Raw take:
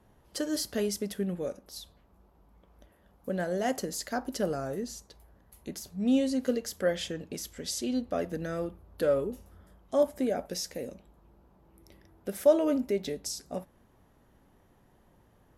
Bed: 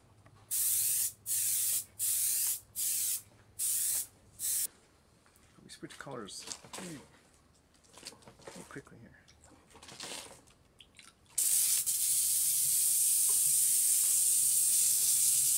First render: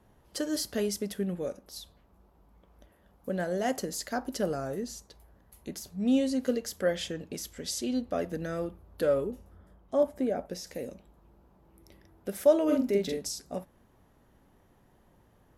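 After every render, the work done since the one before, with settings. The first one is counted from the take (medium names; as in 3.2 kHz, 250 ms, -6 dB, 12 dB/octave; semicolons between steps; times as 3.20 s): 9.31–10.67 s: treble shelf 2.3 kHz -8.5 dB; 12.64–13.29 s: doubling 45 ms -2 dB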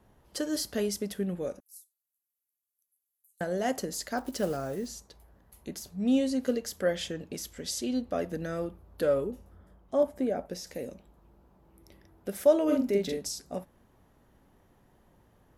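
1.60–3.41 s: inverse Chebyshev high-pass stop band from 1.5 kHz, stop band 80 dB; 4.17–4.91 s: block-companded coder 5-bit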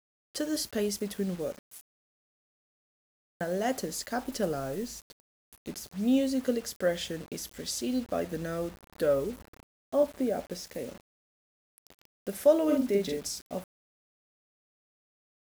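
word length cut 8-bit, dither none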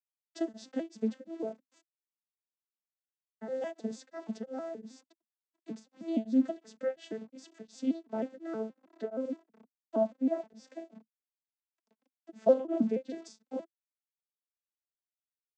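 vocoder on a broken chord minor triad, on A3, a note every 158 ms; tremolo of two beating tones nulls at 2.8 Hz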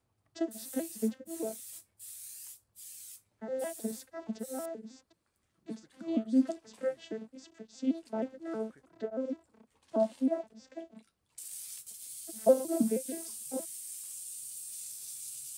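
add bed -15.5 dB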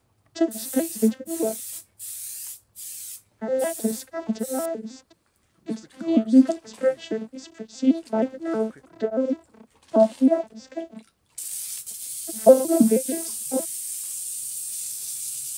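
trim +11.5 dB; peak limiter -2 dBFS, peak gain reduction 1.5 dB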